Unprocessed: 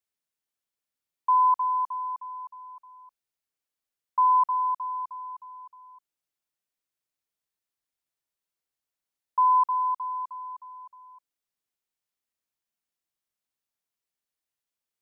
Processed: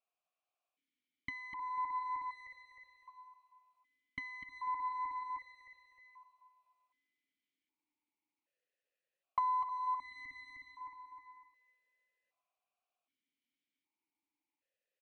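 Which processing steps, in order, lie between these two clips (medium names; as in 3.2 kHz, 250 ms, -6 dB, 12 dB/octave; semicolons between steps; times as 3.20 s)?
half-wave rectifier; dynamic bell 1 kHz, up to +6 dB, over -38 dBFS, Q 1.1; on a send at -8 dB: reverberation RT60 1.7 s, pre-delay 22 ms; on the sum: compression 10:1, threshold -36 dBFS, peak gain reduction 20.5 dB; feedback delay 247 ms, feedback 38%, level -11 dB; stepped vowel filter 1.3 Hz; trim +17.5 dB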